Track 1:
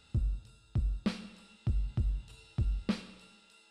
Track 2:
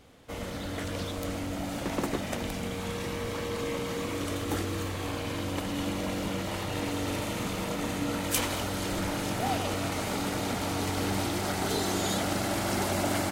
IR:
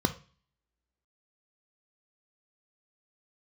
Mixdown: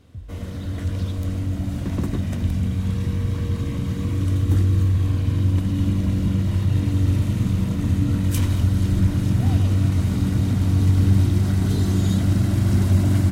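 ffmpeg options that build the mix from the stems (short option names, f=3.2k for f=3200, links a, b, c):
-filter_complex "[0:a]volume=-11dB[a];[1:a]asubboost=boost=4.5:cutoff=210,volume=-4.5dB,asplit=2[b][c];[c]volume=-16.5dB[d];[2:a]atrim=start_sample=2205[e];[d][e]afir=irnorm=-1:irlink=0[f];[a][b][f]amix=inputs=3:normalize=0,equalizer=f=88:t=o:w=0.44:g=13"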